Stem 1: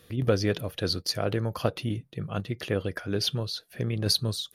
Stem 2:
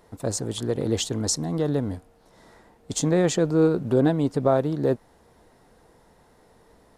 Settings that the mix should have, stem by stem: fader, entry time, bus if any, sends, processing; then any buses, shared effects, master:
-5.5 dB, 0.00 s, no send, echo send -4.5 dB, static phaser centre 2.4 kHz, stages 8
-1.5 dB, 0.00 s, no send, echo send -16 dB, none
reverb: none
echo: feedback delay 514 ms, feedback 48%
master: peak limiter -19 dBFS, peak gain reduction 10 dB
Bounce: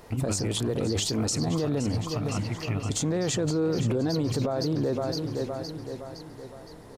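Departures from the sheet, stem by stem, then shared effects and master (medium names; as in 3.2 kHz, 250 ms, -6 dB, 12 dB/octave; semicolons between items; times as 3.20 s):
stem 1 -5.5 dB -> +2.0 dB; stem 2 -1.5 dB -> +7.0 dB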